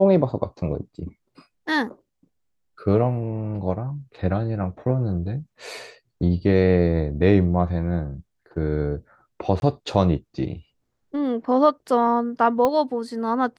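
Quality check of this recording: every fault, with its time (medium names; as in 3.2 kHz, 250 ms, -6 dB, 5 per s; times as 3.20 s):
9.60–9.62 s: dropout 21 ms
12.65 s: pop -9 dBFS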